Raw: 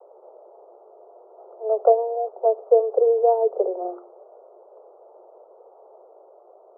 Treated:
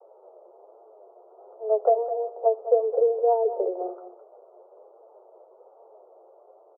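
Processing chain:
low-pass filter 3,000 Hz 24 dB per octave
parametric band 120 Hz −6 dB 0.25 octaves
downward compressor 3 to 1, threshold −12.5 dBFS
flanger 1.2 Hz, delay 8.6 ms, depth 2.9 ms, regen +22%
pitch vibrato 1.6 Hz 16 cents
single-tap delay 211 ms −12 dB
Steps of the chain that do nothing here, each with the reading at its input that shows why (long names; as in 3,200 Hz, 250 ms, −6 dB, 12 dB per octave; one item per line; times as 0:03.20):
low-pass filter 3,000 Hz: nothing at its input above 960 Hz
parametric band 120 Hz: nothing at its input below 340 Hz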